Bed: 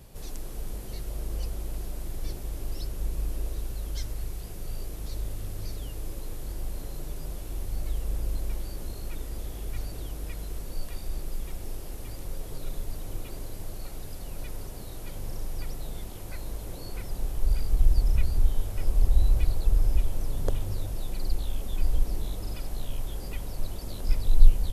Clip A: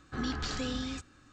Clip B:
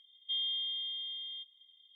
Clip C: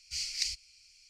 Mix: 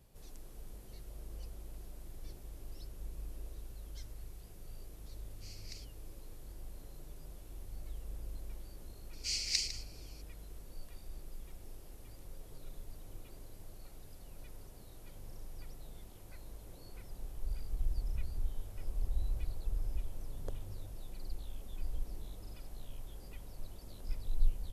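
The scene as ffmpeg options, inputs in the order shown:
ffmpeg -i bed.wav -i cue0.wav -i cue1.wav -i cue2.wav -filter_complex "[3:a]asplit=2[link_01][link_02];[0:a]volume=-14dB[link_03];[link_01]tiltshelf=frequency=970:gain=7[link_04];[link_02]aecho=1:1:153:0.237[link_05];[link_04]atrim=end=1.09,asetpts=PTS-STARTPTS,volume=-13dB,afade=type=in:duration=0.004:curve=hsin,afade=type=out:start_time=1.086:duration=0.004:curve=hsin,adelay=5300[link_06];[link_05]atrim=end=1.09,asetpts=PTS-STARTPTS,volume=-0.5dB,afade=type=in:duration=0.004:curve=hsin,afade=type=out:start_time=1.086:duration=0.004:curve=hsin,adelay=9130[link_07];[link_03][link_06][link_07]amix=inputs=3:normalize=0" out.wav

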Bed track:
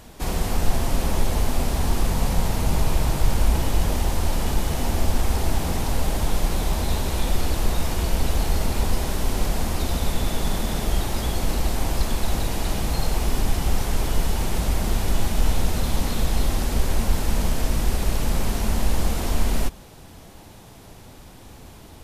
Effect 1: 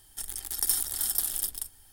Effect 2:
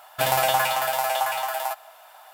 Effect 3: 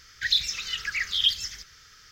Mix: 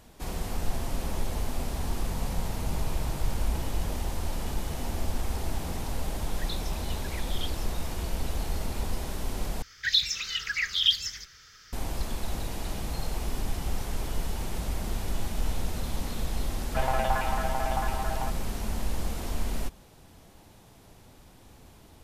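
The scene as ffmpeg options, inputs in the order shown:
ffmpeg -i bed.wav -i cue0.wav -i cue1.wav -i cue2.wav -filter_complex "[3:a]asplit=2[link_01][link_02];[0:a]volume=-9dB[link_03];[2:a]lowpass=2100[link_04];[link_03]asplit=2[link_05][link_06];[link_05]atrim=end=9.624[link_07];[link_02]atrim=end=2.11,asetpts=PTS-STARTPTS,volume=-0.5dB[link_08];[link_06]atrim=start=11.726[link_09];[link_01]atrim=end=2.11,asetpts=PTS-STARTPTS,volume=-17dB,afade=type=in:duration=0.004:curve=hsin,afade=type=out:start_time=2.106:duration=0.004:curve=hsin,adelay=6170[link_10];[link_04]atrim=end=2.33,asetpts=PTS-STARTPTS,volume=-6.5dB,afade=type=in:duration=0.004:curve=hsin,afade=type=out:start_time=2.326:duration=0.004:curve=hsin,adelay=16560[link_11];[link_07][link_08]acrossfade=duration=0.004:curve1=hsin:curve2=hsin[link_12];[link_12][link_09]acrossfade=duration=0.004:curve1=hsin:curve2=hsin[link_13];[link_13][link_10][link_11]amix=inputs=3:normalize=0" out.wav

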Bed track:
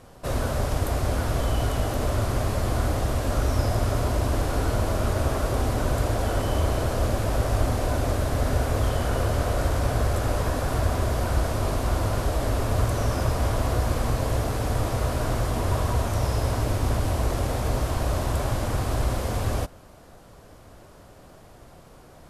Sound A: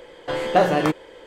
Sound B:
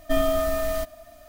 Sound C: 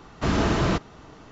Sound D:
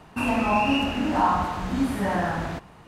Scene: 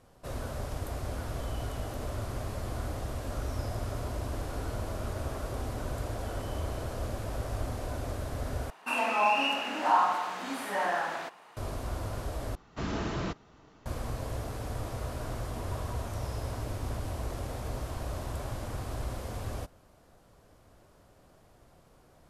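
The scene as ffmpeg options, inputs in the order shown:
ffmpeg -i bed.wav -i cue0.wav -i cue1.wav -i cue2.wav -i cue3.wav -filter_complex "[0:a]volume=-11dB[link_01];[4:a]highpass=570[link_02];[link_01]asplit=3[link_03][link_04][link_05];[link_03]atrim=end=8.704[link_06];[link_02]atrim=end=2.87,asetpts=PTS-STARTPTS,volume=-1.5dB[link_07];[link_04]atrim=start=11.566:end=12.554[link_08];[3:a]atrim=end=1.31,asetpts=PTS-STARTPTS,volume=-11dB[link_09];[link_05]atrim=start=13.856[link_10];[link_06][link_07]acrossfade=duration=0.004:curve1=hsin:curve2=hsin[link_11];[link_11][link_08]acrossfade=duration=0.004:curve1=hsin:curve2=hsin[link_12];[link_12][link_09]acrossfade=duration=0.004:curve1=hsin:curve2=hsin[link_13];[link_13][link_10]acrossfade=duration=0.004:curve1=hsin:curve2=hsin" out.wav

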